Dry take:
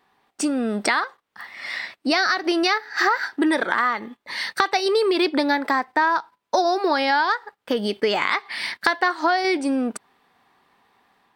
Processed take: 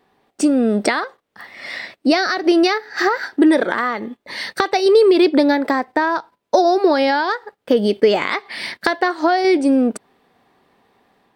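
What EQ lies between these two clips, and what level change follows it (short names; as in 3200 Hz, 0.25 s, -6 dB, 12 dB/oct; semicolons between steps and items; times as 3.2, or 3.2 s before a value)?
resonant low shelf 740 Hz +6 dB, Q 1.5; +1.0 dB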